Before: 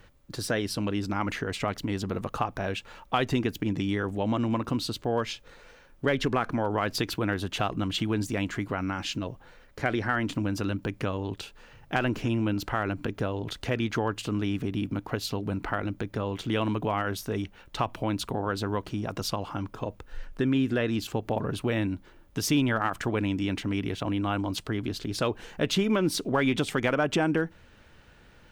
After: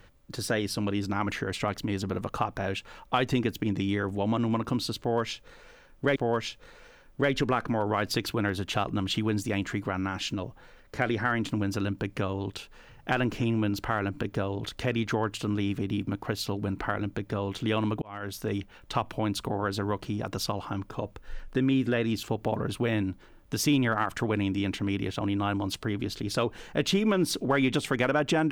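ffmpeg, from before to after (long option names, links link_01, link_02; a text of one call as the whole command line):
ffmpeg -i in.wav -filter_complex "[0:a]asplit=3[link_01][link_02][link_03];[link_01]atrim=end=6.162[link_04];[link_02]atrim=start=4.998:end=16.86,asetpts=PTS-STARTPTS,afade=type=out:start_time=11.858:duration=0.004:curve=hsin[link_05];[link_03]atrim=start=16.86,asetpts=PTS-STARTPTS,afade=type=in:duration=0.43[link_06];[link_05][link_06]concat=n=2:v=0:a=1[link_07];[link_04][link_07]acrossfade=duration=0.004:curve1=hsin:curve2=hsin" out.wav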